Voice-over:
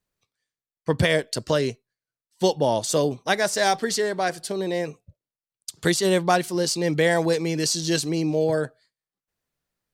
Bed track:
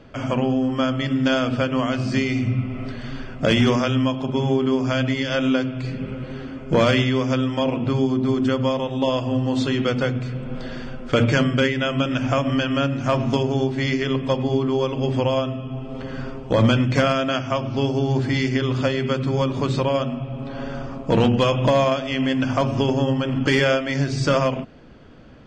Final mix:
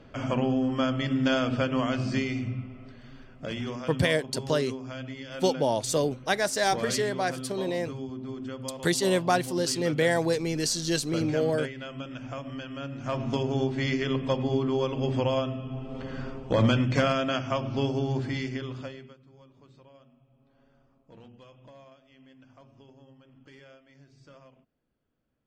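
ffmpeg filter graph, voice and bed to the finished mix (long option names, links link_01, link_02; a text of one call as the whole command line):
ffmpeg -i stem1.wav -i stem2.wav -filter_complex "[0:a]adelay=3000,volume=-4dB[link_01];[1:a]volume=6dB,afade=type=out:start_time=2:duration=0.8:silence=0.266073,afade=type=in:start_time=12.79:duration=0.81:silence=0.281838,afade=type=out:start_time=17.8:duration=1.36:silence=0.0375837[link_02];[link_01][link_02]amix=inputs=2:normalize=0" out.wav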